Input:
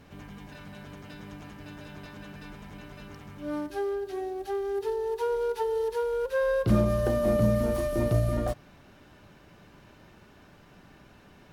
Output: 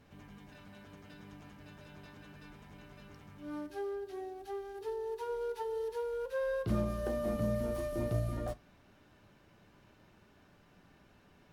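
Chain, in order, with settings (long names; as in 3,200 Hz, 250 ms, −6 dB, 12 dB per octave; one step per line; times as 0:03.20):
flanger 0.21 Hz, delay 8.7 ms, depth 4.2 ms, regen −68%
level −4.5 dB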